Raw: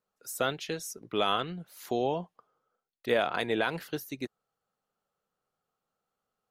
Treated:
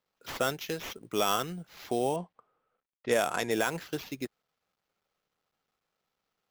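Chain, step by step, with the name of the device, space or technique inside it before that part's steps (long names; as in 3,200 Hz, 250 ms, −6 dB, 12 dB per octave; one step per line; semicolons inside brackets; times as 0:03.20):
early companding sampler (sample-rate reduction 9,000 Hz, jitter 0%; log-companded quantiser 8 bits)
0:02.16–0:03.51: low-pass that shuts in the quiet parts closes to 2,200 Hz, open at −24 dBFS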